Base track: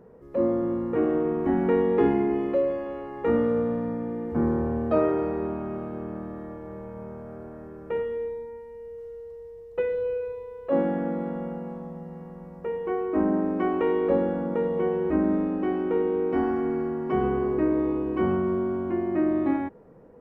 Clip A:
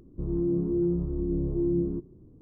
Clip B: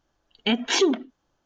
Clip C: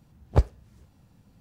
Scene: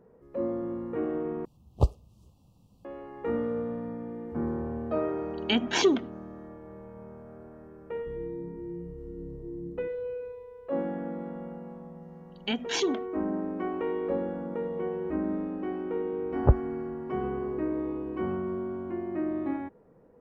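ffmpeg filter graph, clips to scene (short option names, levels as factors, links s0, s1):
-filter_complex "[3:a]asplit=2[s0][s1];[2:a]asplit=2[s2][s3];[0:a]volume=0.447[s4];[s0]asuperstop=centerf=1800:order=12:qfactor=1.3[s5];[s2]acrossover=split=2100[s6][s7];[s6]aeval=exprs='val(0)*(1-0.5/2+0.5/2*cos(2*PI*1.4*n/s))':c=same[s8];[s7]aeval=exprs='val(0)*(1-0.5/2-0.5/2*cos(2*PI*1.4*n/s))':c=same[s9];[s8][s9]amix=inputs=2:normalize=0[s10];[s1]lowpass=f=1400:w=0.5412,lowpass=f=1400:w=1.3066[s11];[s4]asplit=2[s12][s13];[s12]atrim=end=1.454[s14];[s5]atrim=end=1.4,asetpts=PTS-STARTPTS,volume=0.708[s15];[s13]atrim=start=2.846[s16];[s10]atrim=end=1.45,asetpts=PTS-STARTPTS,volume=0.944,afade=t=in:d=0.004:c=hsin,afade=t=out:st=1.446:d=0.004:c=hsin,adelay=5030[s17];[1:a]atrim=end=2.41,asetpts=PTS-STARTPTS,volume=0.224,afade=t=in:d=0.004:c=hsin,afade=t=out:st=2.406:d=0.004:c=hsin,adelay=7880[s18];[s3]atrim=end=1.45,asetpts=PTS-STARTPTS,volume=0.422,afade=t=in:d=0.004:c=hsin,afade=t=out:st=1.446:d=0.004:c=hsin,adelay=12010[s19];[s11]atrim=end=1.4,asetpts=PTS-STARTPTS,afade=t=in:d=0.004:c=hsin,afade=t=out:st=1.396:d=0.004:c=hsin,adelay=16110[s20];[s14][s15]acrossfade=d=0.004:c1=hsin:c2=hsin[s21];[s21][s16]acrossfade=d=0.004:c1=hsin:c2=hsin[s22];[s22][s17][s18][s19][s20]amix=inputs=5:normalize=0"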